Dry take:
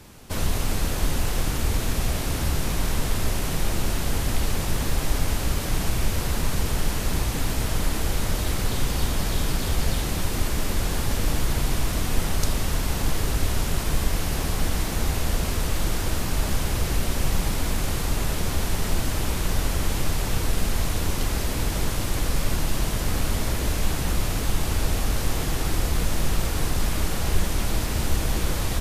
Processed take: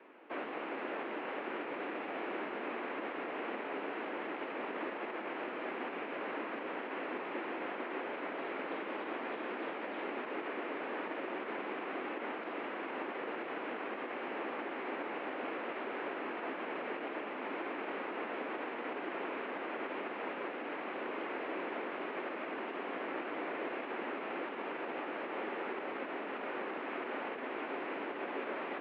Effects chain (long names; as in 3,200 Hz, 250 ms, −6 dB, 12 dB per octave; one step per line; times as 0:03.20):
brickwall limiter −14.5 dBFS, peak gain reduction 7 dB
single-sideband voice off tune +68 Hz 230–2,500 Hz
level −5.5 dB